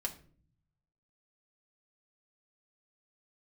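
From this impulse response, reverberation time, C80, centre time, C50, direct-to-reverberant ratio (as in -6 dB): 0.45 s, 18.5 dB, 8 ms, 14.0 dB, 0.5 dB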